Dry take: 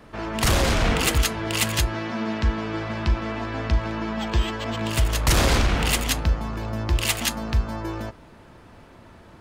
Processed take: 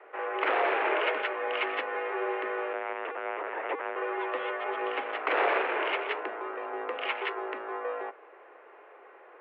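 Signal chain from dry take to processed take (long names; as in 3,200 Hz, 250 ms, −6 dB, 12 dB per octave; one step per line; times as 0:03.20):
0:02.73–0:03.96: linear-prediction vocoder at 8 kHz pitch kept
single-sideband voice off tune +160 Hz 230–2,400 Hz
level −2 dB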